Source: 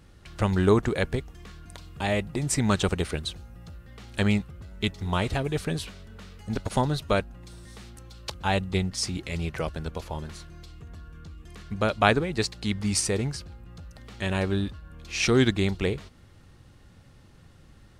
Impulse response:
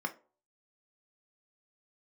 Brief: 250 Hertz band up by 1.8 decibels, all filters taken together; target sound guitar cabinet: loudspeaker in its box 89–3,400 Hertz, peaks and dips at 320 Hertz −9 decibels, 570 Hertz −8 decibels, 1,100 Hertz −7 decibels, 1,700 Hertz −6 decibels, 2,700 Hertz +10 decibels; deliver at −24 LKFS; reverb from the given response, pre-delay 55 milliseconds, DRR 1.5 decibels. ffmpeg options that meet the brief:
-filter_complex "[0:a]equalizer=frequency=250:width_type=o:gain=5,asplit=2[link_01][link_02];[1:a]atrim=start_sample=2205,adelay=55[link_03];[link_02][link_03]afir=irnorm=-1:irlink=0,volume=-5.5dB[link_04];[link_01][link_04]amix=inputs=2:normalize=0,highpass=89,equalizer=frequency=320:width_type=q:width=4:gain=-9,equalizer=frequency=570:width_type=q:width=4:gain=-8,equalizer=frequency=1100:width_type=q:width=4:gain=-7,equalizer=frequency=1700:width_type=q:width=4:gain=-6,equalizer=frequency=2700:width_type=q:width=4:gain=10,lowpass=frequency=3400:width=0.5412,lowpass=frequency=3400:width=1.3066,volume=1.5dB"

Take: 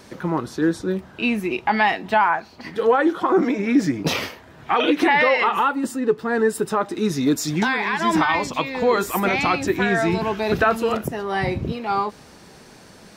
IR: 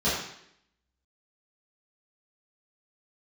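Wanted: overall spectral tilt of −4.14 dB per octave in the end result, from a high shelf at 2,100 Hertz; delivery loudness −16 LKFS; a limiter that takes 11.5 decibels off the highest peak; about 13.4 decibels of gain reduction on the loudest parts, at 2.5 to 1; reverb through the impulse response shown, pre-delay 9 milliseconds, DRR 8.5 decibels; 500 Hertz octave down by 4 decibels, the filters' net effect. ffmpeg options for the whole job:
-filter_complex "[0:a]equalizer=frequency=500:width_type=o:gain=-5.5,highshelf=frequency=2100:gain=5.5,acompressor=threshold=-34dB:ratio=2.5,alimiter=level_in=3.5dB:limit=-24dB:level=0:latency=1,volume=-3.5dB,asplit=2[link_01][link_02];[1:a]atrim=start_sample=2205,adelay=9[link_03];[link_02][link_03]afir=irnorm=-1:irlink=0,volume=-22dB[link_04];[link_01][link_04]amix=inputs=2:normalize=0,volume=19.5dB"

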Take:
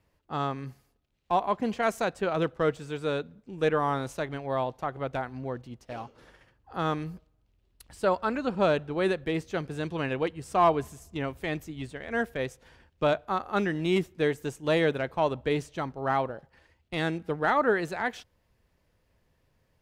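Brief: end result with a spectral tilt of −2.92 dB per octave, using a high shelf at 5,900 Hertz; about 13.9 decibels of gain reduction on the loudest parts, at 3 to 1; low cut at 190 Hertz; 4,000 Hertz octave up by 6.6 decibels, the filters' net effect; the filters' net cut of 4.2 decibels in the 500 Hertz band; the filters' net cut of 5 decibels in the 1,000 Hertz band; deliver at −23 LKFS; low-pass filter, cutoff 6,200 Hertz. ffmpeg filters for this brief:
ffmpeg -i in.wav -af "highpass=190,lowpass=6200,equalizer=frequency=500:width_type=o:gain=-3.5,equalizer=frequency=1000:width_type=o:gain=-6,equalizer=frequency=4000:width_type=o:gain=8,highshelf=frequency=5900:gain=3.5,acompressor=threshold=-42dB:ratio=3,volume=20.5dB" out.wav

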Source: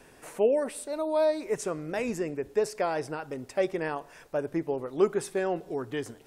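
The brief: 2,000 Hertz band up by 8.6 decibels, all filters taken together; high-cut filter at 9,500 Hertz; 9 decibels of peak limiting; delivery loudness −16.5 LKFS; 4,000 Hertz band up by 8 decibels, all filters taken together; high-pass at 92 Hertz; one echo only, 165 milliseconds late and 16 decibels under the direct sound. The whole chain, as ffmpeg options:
ffmpeg -i in.wav -af "highpass=92,lowpass=9500,equalizer=frequency=2000:width_type=o:gain=9,equalizer=frequency=4000:width_type=o:gain=7.5,alimiter=limit=-19.5dB:level=0:latency=1,aecho=1:1:165:0.158,volume=15dB" out.wav

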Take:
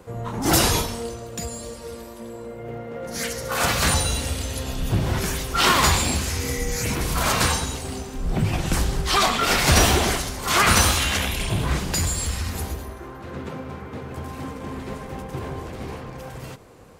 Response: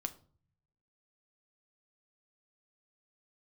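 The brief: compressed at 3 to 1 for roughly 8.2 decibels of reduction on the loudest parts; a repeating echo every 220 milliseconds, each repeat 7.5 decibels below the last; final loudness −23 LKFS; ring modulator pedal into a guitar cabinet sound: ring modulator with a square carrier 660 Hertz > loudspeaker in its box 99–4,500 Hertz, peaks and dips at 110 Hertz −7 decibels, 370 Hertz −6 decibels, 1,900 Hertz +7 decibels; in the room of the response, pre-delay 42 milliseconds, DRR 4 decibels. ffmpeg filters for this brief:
-filter_complex "[0:a]acompressor=threshold=-23dB:ratio=3,aecho=1:1:220|440|660|880|1100:0.422|0.177|0.0744|0.0312|0.0131,asplit=2[link_01][link_02];[1:a]atrim=start_sample=2205,adelay=42[link_03];[link_02][link_03]afir=irnorm=-1:irlink=0,volume=-3.5dB[link_04];[link_01][link_04]amix=inputs=2:normalize=0,aeval=exprs='val(0)*sgn(sin(2*PI*660*n/s))':channel_layout=same,highpass=99,equalizer=frequency=110:width_type=q:width=4:gain=-7,equalizer=frequency=370:width_type=q:width=4:gain=-6,equalizer=frequency=1900:width_type=q:width=4:gain=7,lowpass=frequency=4500:width=0.5412,lowpass=frequency=4500:width=1.3066,volume=1dB"

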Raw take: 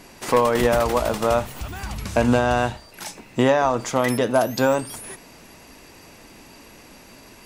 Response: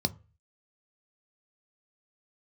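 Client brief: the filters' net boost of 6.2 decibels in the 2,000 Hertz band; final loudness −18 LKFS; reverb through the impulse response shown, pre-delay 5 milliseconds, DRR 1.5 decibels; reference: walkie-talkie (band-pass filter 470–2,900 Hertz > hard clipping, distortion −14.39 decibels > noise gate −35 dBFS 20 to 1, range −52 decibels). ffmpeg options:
-filter_complex "[0:a]equalizer=frequency=2000:width_type=o:gain=9,asplit=2[link_01][link_02];[1:a]atrim=start_sample=2205,adelay=5[link_03];[link_02][link_03]afir=irnorm=-1:irlink=0,volume=-7dB[link_04];[link_01][link_04]amix=inputs=2:normalize=0,highpass=470,lowpass=2900,asoftclip=type=hard:threshold=-11dB,agate=range=-52dB:threshold=-35dB:ratio=20,volume=1dB"

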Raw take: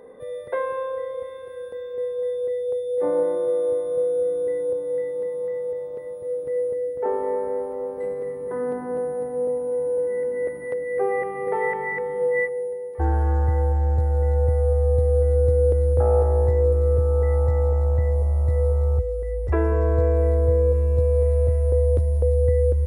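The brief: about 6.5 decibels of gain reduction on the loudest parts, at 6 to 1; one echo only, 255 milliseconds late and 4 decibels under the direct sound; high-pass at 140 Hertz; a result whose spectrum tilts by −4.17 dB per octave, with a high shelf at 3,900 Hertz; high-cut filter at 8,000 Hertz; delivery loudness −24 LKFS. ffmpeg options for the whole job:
ffmpeg -i in.wav -af "highpass=140,lowpass=8000,highshelf=frequency=3900:gain=-8.5,acompressor=threshold=-25dB:ratio=6,aecho=1:1:255:0.631,volume=2dB" out.wav

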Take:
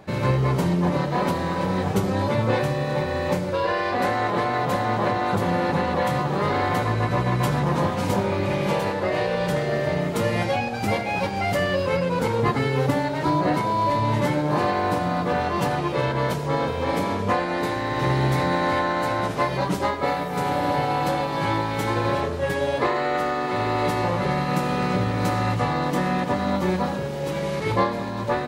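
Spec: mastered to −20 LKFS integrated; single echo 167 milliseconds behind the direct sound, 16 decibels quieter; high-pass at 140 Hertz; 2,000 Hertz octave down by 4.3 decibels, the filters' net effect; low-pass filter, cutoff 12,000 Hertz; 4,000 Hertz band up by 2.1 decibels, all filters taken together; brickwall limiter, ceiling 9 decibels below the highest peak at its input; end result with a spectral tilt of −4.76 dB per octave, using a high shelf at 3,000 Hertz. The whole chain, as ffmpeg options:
ffmpeg -i in.wav -af "highpass=140,lowpass=12000,equalizer=frequency=2000:width_type=o:gain=-5.5,highshelf=frequency=3000:gain=-4,equalizer=frequency=4000:width_type=o:gain=7,alimiter=limit=-18dB:level=0:latency=1,aecho=1:1:167:0.158,volume=7dB" out.wav

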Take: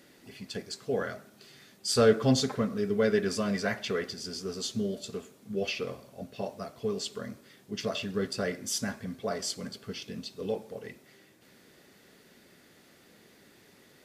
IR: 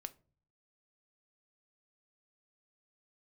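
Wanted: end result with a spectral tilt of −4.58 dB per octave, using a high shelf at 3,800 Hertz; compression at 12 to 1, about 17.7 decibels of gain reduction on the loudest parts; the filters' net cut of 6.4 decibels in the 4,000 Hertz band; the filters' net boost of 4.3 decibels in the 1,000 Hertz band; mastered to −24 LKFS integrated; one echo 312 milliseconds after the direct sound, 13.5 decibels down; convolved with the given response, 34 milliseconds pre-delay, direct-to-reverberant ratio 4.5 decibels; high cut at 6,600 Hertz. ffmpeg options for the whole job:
-filter_complex "[0:a]lowpass=6600,equalizer=frequency=1000:width_type=o:gain=7,highshelf=frequency=3800:gain=-3,equalizer=frequency=4000:width_type=o:gain=-5.5,acompressor=threshold=-34dB:ratio=12,aecho=1:1:312:0.211,asplit=2[link_01][link_02];[1:a]atrim=start_sample=2205,adelay=34[link_03];[link_02][link_03]afir=irnorm=-1:irlink=0,volume=-0.5dB[link_04];[link_01][link_04]amix=inputs=2:normalize=0,volume=14.5dB"

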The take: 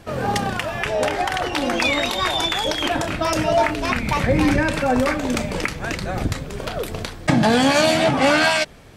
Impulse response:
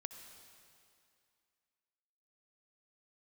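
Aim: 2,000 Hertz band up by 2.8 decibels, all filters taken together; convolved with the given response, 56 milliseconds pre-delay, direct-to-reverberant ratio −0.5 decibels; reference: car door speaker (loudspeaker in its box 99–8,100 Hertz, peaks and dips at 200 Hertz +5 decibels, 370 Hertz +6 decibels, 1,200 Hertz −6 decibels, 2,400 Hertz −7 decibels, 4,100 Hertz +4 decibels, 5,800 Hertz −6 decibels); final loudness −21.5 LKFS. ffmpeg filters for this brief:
-filter_complex "[0:a]equalizer=frequency=2000:width_type=o:gain=7,asplit=2[link_01][link_02];[1:a]atrim=start_sample=2205,adelay=56[link_03];[link_02][link_03]afir=irnorm=-1:irlink=0,volume=4dB[link_04];[link_01][link_04]amix=inputs=2:normalize=0,highpass=99,equalizer=frequency=200:width_type=q:width=4:gain=5,equalizer=frequency=370:width_type=q:width=4:gain=6,equalizer=frequency=1200:width_type=q:width=4:gain=-6,equalizer=frequency=2400:width_type=q:width=4:gain=-7,equalizer=frequency=4100:width_type=q:width=4:gain=4,equalizer=frequency=5800:width_type=q:width=4:gain=-6,lowpass=frequency=8100:width=0.5412,lowpass=frequency=8100:width=1.3066,volume=-6dB"

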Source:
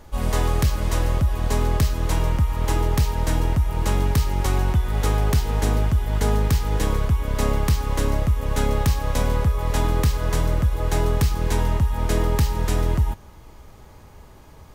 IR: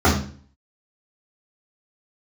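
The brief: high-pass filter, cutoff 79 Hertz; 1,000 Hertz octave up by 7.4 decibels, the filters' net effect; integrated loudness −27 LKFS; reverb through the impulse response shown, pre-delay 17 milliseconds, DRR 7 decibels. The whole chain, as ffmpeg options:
-filter_complex "[0:a]highpass=79,equalizer=frequency=1000:width_type=o:gain=9,asplit=2[link_01][link_02];[1:a]atrim=start_sample=2205,adelay=17[link_03];[link_02][link_03]afir=irnorm=-1:irlink=0,volume=-29.5dB[link_04];[link_01][link_04]amix=inputs=2:normalize=0,volume=-10.5dB"

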